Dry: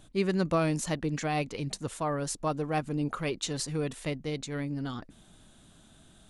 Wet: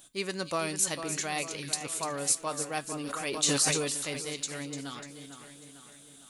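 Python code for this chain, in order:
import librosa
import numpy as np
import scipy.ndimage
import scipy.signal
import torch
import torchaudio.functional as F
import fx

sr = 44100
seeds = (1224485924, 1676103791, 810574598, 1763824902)

y = fx.riaa(x, sr, side='recording')
y = fx.comb_fb(y, sr, f0_hz=140.0, decay_s=0.2, harmonics='all', damping=0.0, mix_pct=50)
y = fx.echo_split(y, sr, split_hz=3000.0, low_ms=450, high_ms=297, feedback_pct=52, wet_db=-9.0)
y = fx.sustainer(y, sr, db_per_s=32.0, at=(2.83, 4.33))
y = F.gain(torch.from_numpy(y), 2.0).numpy()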